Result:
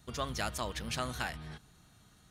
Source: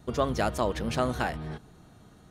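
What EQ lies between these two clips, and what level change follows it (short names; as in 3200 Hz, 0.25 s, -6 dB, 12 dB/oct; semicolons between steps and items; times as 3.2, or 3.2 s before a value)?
passive tone stack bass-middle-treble 5-5-5; +7.0 dB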